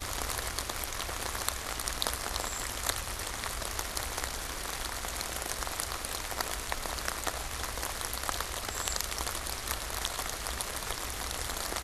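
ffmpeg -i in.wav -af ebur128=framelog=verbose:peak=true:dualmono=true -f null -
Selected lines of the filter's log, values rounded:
Integrated loudness:
  I:         -31.0 LUFS
  Threshold: -41.0 LUFS
Loudness range:
  LRA:         1.1 LU
  Threshold: -51.0 LUFS
  LRA low:   -31.5 LUFS
  LRA high:  -30.5 LUFS
True peak:
  Peak:       -6.1 dBFS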